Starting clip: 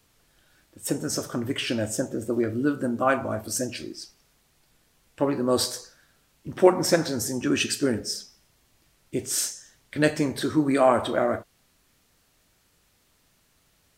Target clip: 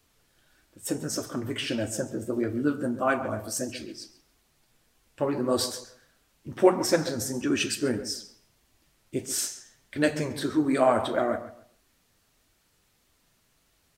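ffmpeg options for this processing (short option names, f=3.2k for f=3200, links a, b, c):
-filter_complex "[0:a]asplit=2[a][b];[b]adelay=137,lowpass=f=3.2k:p=1,volume=-13dB,asplit=2[c][d];[d]adelay=137,lowpass=f=3.2k:p=1,volume=0.24,asplit=2[e][f];[f]adelay=137,lowpass=f=3.2k:p=1,volume=0.24[g];[c][e][g]amix=inputs=3:normalize=0[h];[a][h]amix=inputs=2:normalize=0,flanger=delay=2.6:depth=7:regen=-38:speed=1.6:shape=sinusoidal,volume=1dB"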